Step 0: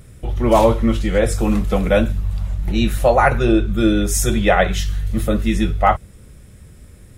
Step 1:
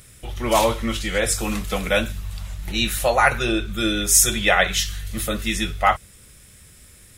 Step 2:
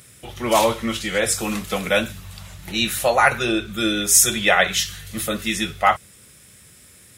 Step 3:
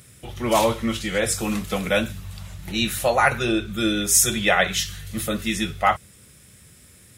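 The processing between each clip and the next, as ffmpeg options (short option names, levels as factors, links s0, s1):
-af "tiltshelf=f=1200:g=-8.5,volume=0.891"
-af "highpass=110,volume=1.12"
-af "lowshelf=f=280:g=6.5,volume=0.708"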